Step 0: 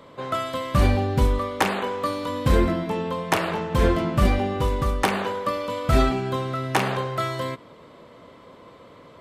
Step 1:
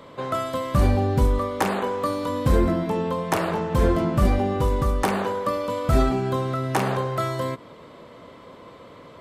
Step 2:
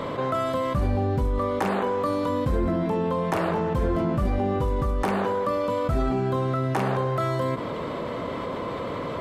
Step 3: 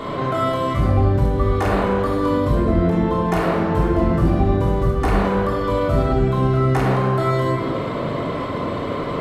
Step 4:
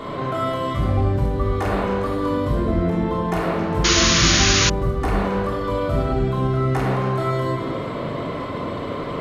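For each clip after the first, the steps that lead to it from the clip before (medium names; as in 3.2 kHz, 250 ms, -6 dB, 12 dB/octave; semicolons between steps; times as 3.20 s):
dynamic bell 2.8 kHz, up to -7 dB, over -41 dBFS, Q 0.77; in parallel at -2 dB: peak limiter -17.5 dBFS, peak gain reduction 10 dB; on the sum: trim -2.5 dB
treble shelf 3.4 kHz -8.5 dB; level flattener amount 70%; trim -7 dB
simulated room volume 1800 m³, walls mixed, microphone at 3.3 m
repeats whose band climbs or falls 136 ms, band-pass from 2.8 kHz, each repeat 0.7 oct, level -6 dB; painted sound noise, 3.84–4.70 s, 970–7000 Hz -15 dBFS; trim -3 dB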